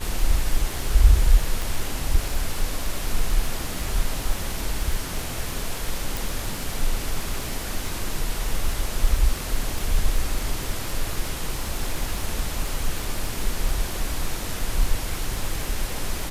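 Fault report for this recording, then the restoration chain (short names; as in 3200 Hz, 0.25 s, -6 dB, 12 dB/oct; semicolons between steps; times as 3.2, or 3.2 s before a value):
crackle 50/s -27 dBFS
1.62 pop
6.17 pop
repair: de-click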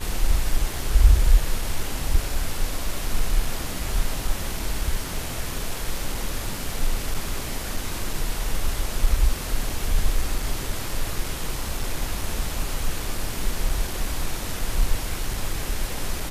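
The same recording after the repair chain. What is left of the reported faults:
none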